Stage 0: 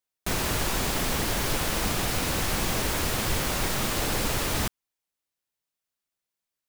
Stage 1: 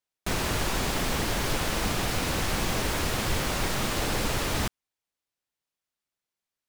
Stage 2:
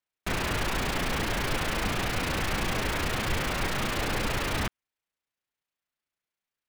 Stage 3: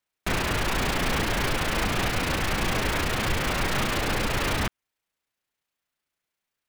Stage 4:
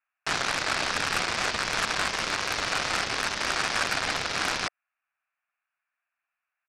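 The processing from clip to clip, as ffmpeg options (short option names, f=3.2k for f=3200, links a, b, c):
-af "highshelf=f=9.3k:g=-7.5"
-filter_complex "[0:a]acrossover=split=760|2700[a][b][c];[b]crystalizer=i=4.5:c=0[d];[c]tremolo=f=29:d=0.974[e];[a][d][e]amix=inputs=3:normalize=0,volume=-1.5dB"
-af "alimiter=limit=-20.5dB:level=0:latency=1:release=230,volume=5.5dB"
-af "aecho=1:1:0.9:0.49,highpass=f=360:t=q:w=0.5412,highpass=f=360:t=q:w=1.307,lowpass=f=2.1k:t=q:w=0.5176,lowpass=f=2.1k:t=q:w=0.7071,lowpass=f=2.1k:t=q:w=1.932,afreqshift=340,aeval=exprs='0.133*(cos(1*acos(clip(val(0)/0.133,-1,1)))-cos(1*PI/2))+0.0422*(cos(7*acos(clip(val(0)/0.133,-1,1)))-cos(7*PI/2))':c=same,volume=2.5dB"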